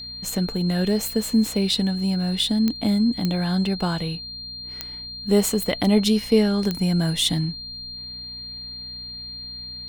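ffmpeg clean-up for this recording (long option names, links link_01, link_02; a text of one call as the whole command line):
ffmpeg -i in.wav -af "adeclick=threshold=4,bandreject=frequency=61.2:width_type=h:width=4,bandreject=frequency=122.4:width_type=h:width=4,bandreject=frequency=183.6:width_type=h:width=4,bandreject=frequency=244.8:width_type=h:width=4,bandreject=frequency=4200:width=30" out.wav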